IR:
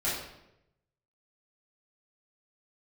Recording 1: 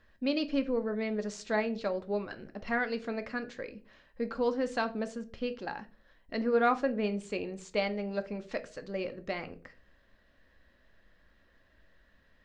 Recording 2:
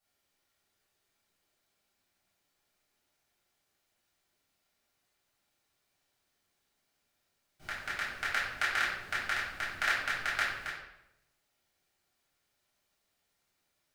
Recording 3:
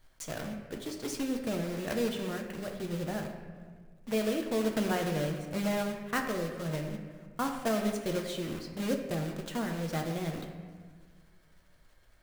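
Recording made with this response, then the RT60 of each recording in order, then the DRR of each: 2; 0.40, 0.85, 1.6 s; 8.5, -10.5, 2.5 dB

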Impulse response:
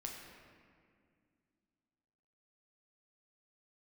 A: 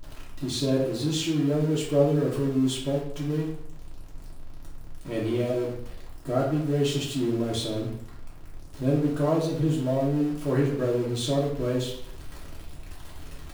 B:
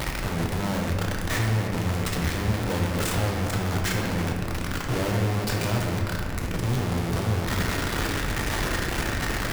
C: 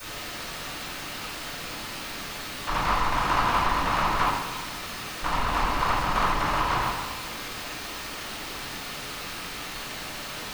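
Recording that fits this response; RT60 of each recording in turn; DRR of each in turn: B; 0.65, 2.1, 1.2 s; -5.5, -0.5, -15.0 dB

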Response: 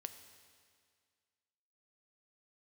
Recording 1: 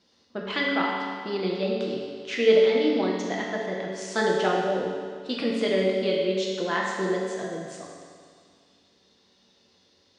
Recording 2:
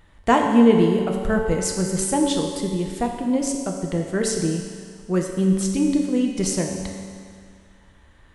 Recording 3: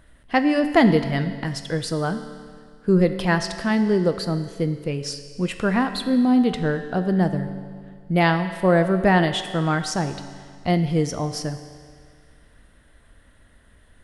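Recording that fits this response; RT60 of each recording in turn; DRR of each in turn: 3; 2.0, 2.0, 2.0 s; -3.5, 1.5, 8.5 dB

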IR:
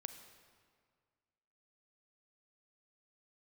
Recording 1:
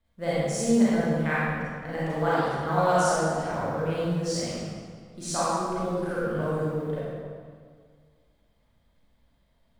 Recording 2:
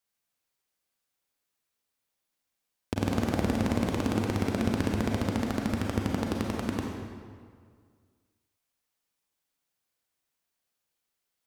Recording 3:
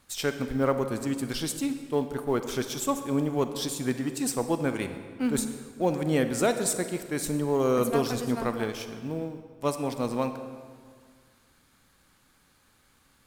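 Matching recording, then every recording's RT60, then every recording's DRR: 3; 1.9, 1.9, 1.9 s; -10.5, -0.5, 8.5 dB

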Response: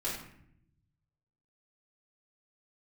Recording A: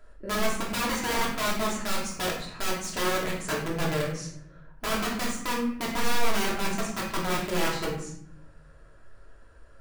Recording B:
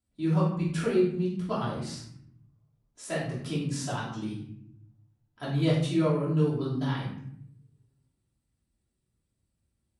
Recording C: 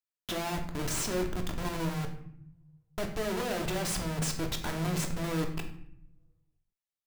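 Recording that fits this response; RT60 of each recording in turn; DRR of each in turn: B; 0.70, 0.70, 0.70 s; -4.5, -8.5, 3.0 dB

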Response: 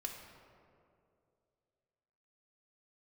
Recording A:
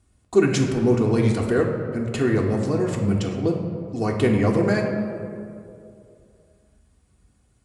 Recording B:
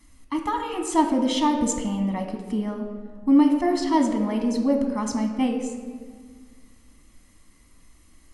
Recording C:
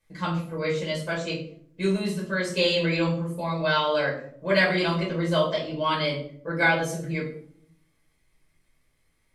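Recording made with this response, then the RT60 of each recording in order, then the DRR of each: A; 2.5, 1.7, 0.60 s; -0.5, 3.5, -6.0 dB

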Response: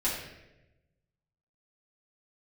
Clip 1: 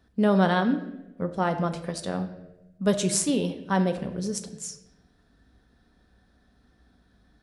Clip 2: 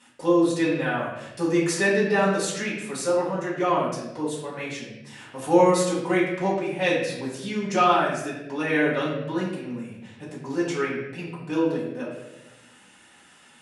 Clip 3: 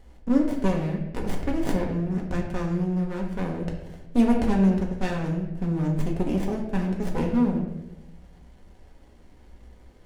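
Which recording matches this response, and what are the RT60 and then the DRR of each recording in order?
2; 1.0, 1.0, 1.0 s; 6.5, -9.0, -0.5 dB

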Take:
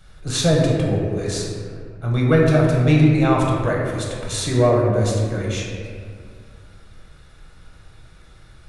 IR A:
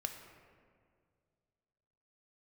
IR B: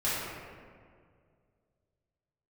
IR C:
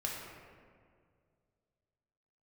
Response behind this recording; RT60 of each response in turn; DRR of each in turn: C; 2.1, 2.1, 2.1 s; 4.5, -12.0, -3.0 dB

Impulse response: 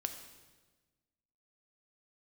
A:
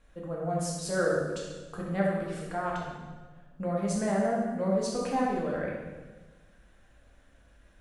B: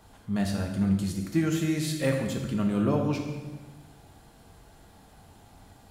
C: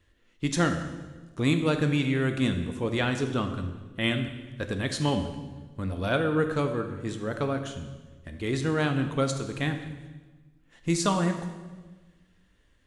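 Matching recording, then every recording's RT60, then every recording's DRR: C; 1.3, 1.3, 1.3 s; -4.5, 1.5, 6.0 dB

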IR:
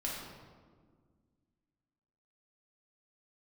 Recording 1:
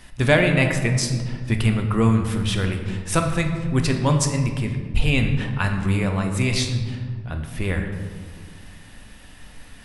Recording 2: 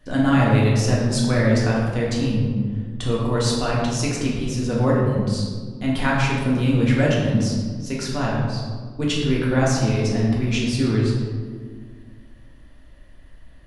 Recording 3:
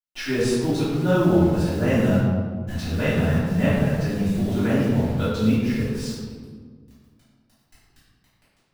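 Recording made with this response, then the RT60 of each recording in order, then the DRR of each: 2; 1.7, 1.7, 1.7 s; 4.0, -4.5, -14.0 dB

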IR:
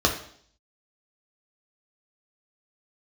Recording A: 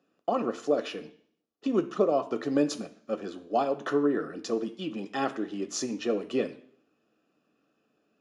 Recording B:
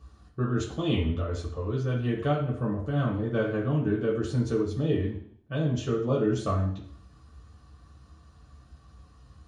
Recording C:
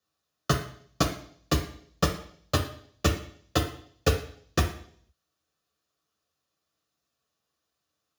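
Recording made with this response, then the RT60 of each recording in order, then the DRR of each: C; 0.60, 0.60, 0.60 s; 8.5, -5.0, 0.5 dB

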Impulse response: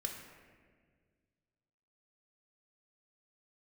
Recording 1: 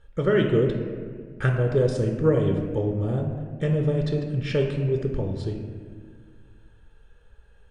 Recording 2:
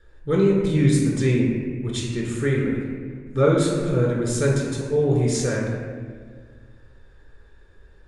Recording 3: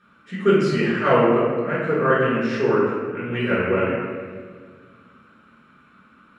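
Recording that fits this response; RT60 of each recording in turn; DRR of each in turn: 1; 1.7, 1.7, 1.7 s; 2.0, -3.5, -8.5 dB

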